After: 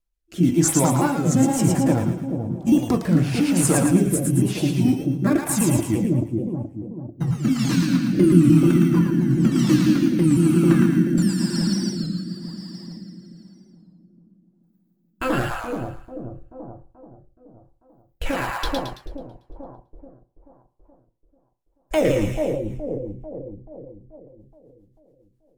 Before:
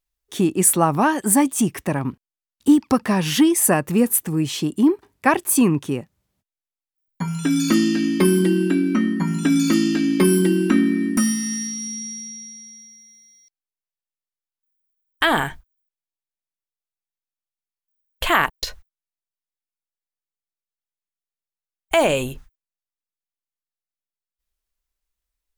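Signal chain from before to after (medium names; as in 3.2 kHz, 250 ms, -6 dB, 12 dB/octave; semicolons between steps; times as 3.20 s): sawtooth pitch modulation -5 st, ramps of 170 ms; tilt EQ -1.5 dB/octave; in parallel at -11.5 dB: sample-and-hold 15×; on the sum: peak limiter -8.5 dBFS, peak gain reduction 7.5 dB; treble shelf 6.7 kHz +5 dB; two-band feedback delay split 730 Hz, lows 433 ms, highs 111 ms, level -3.5 dB; on a send at -6 dB: reverberation RT60 0.40 s, pre-delay 3 ms; on the sum: rotary cabinet horn 1 Hz, later 7.5 Hz, at 22.19 s; warped record 33 1/3 rpm, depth 100 cents; trim -1.5 dB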